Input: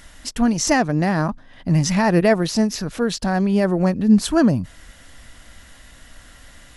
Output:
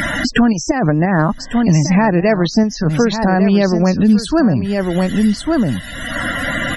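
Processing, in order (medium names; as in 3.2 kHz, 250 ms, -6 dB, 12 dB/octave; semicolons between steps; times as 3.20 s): in parallel at -1.5 dB: peak limiter -11 dBFS, peak gain reduction 7 dB; 0.71–1.19 s: on the sum: compressor with a negative ratio -18 dBFS, ratio -1; tremolo saw up 1.9 Hz, depth 35%; loudest bins only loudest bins 64; on a send: delay 1150 ms -11 dB; on the sum: three bands compressed up and down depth 100%; trim +2 dB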